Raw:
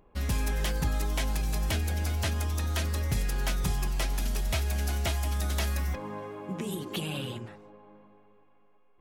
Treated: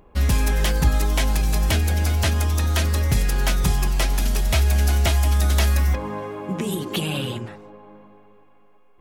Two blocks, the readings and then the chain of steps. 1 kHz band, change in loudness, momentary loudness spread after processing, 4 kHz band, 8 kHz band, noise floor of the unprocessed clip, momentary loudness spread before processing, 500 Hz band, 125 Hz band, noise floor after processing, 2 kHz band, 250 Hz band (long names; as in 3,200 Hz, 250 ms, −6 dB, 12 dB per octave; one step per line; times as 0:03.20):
+8.5 dB, +9.5 dB, 8 LU, +8.5 dB, +8.5 dB, −60 dBFS, 6 LU, +8.5 dB, +10.0 dB, −52 dBFS, +8.5 dB, +8.5 dB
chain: parametric band 64 Hz +7 dB 0.2 octaves
level +8.5 dB